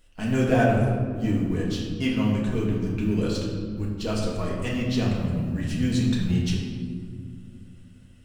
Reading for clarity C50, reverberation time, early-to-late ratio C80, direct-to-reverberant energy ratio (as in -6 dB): 1.5 dB, 2.1 s, 3.5 dB, -5.0 dB